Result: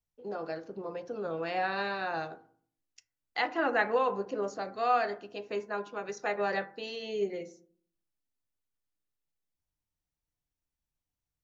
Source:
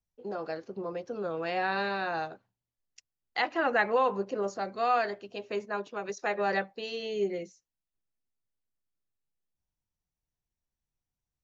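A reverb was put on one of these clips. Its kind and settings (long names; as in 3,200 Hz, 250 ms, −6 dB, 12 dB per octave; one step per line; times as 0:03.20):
feedback delay network reverb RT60 0.52 s, low-frequency decay 1.4×, high-frequency decay 0.35×, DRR 9 dB
level −2 dB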